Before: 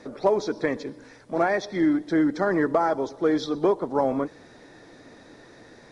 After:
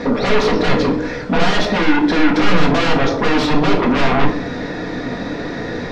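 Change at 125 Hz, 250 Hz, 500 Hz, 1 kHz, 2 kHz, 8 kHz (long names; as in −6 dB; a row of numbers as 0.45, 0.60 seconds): +16.5 dB, +9.0 dB, +6.0 dB, +9.0 dB, +14.0 dB, can't be measured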